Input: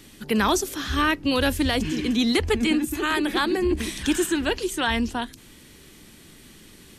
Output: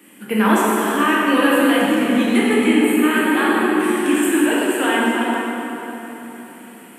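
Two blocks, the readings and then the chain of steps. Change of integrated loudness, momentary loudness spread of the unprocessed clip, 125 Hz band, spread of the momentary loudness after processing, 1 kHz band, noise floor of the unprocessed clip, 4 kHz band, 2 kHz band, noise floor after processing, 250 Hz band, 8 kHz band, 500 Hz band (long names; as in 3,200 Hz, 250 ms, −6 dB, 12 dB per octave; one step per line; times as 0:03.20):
+7.0 dB, 4 LU, can't be measured, 14 LU, +8.0 dB, −49 dBFS, +0.5 dB, +8.0 dB, −41 dBFS, +8.0 dB, +3.5 dB, +7.5 dB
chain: Butterworth high-pass 180 Hz 36 dB per octave
flat-topped bell 4,800 Hz −15.5 dB 1.1 octaves
dense smooth reverb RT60 3.8 s, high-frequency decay 0.65×, DRR −7 dB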